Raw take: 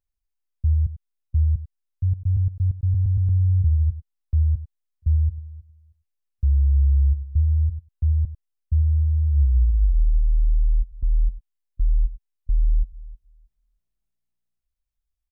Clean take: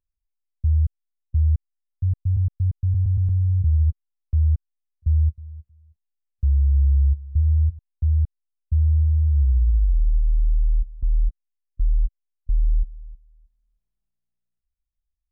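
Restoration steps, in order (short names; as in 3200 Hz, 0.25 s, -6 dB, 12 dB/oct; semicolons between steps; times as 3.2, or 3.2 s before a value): inverse comb 97 ms -15.5 dB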